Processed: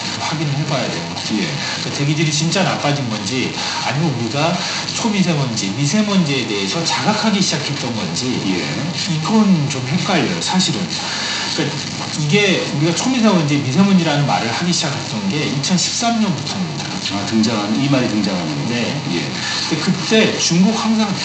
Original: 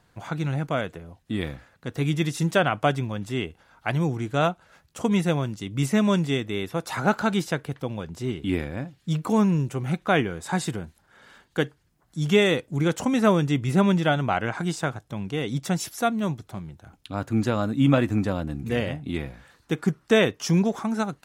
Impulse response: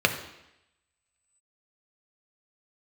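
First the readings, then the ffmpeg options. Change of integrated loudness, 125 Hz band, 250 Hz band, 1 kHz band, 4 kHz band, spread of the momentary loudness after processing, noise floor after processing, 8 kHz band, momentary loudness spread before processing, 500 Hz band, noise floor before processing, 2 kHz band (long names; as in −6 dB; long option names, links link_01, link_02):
+8.5 dB, +7.5 dB, +8.0 dB, +8.0 dB, +16.5 dB, 6 LU, −24 dBFS, +17.5 dB, 13 LU, +4.5 dB, −65 dBFS, +9.0 dB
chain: -filter_complex "[0:a]aeval=exprs='val(0)+0.5*0.1*sgn(val(0))':channel_layout=same,highshelf=frequency=2100:gain=9.5,aeval=exprs='val(0)+0.0355*(sin(2*PI*50*n/s)+sin(2*PI*2*50*n/s)/2+sin(2*PI*3*50*n/s)/3+sin(2*PI*4*50*n/s)/4+sin(2*PI*5*50*n/s)/5)':channel_layout=same[link_01];[1:a]atrim=start_sample=2205,asetrate=74970,aresample=44100[link_02];[link_01][link_02]afir=irnorm=-1:irlink=0,aresample=16000,aresample=44100,volume=-8.5dB"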